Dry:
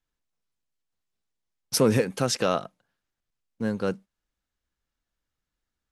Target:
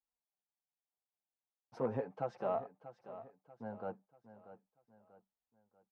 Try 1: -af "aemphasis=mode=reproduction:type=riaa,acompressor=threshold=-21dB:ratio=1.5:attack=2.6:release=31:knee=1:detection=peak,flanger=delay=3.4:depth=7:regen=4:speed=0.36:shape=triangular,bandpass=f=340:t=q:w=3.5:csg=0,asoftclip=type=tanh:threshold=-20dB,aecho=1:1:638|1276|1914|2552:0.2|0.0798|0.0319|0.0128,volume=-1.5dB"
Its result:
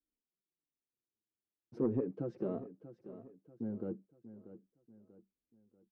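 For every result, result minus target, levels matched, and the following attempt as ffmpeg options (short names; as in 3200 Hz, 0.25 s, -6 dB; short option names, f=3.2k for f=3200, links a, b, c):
1000 Hz band -15.5 dB; compressor: peak gain reduction +5 dB
-af "aemphasis=mode=reproduction:type=riaa,acompressor=threshold=-21dB:ratio=1.5:attack=2.6:release=31:knee=1:detection=peak,flanger=delay=3.4:depth=7:regen=4:speed=0.36:shape=triangular,bandpass=f=800:t=q:w=3.5:csg=0,asoftclip=type=tanh:threshold=-20dB,aecho=1:1:638|1276|1914|2552:0.2|0.0798|0.0319|0.0128,volume=-1.5dB"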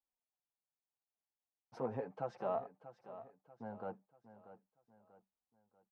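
compressor: peak gain reduction +5 dB
-af "aemphasis=mode=reproduction:type=riaa,flanger=delay=3.4:depth=7:regen=4:speed=0.36:shape=triangular,bandpass=f=800:t=q:w=3.5:csg=0,asoftclip=type=tanh:threshold=-20dB,aecho=1:1:638|1276|1914|2552:0.2|0.0798|0.0319|0.0128,volume=-1.5dB"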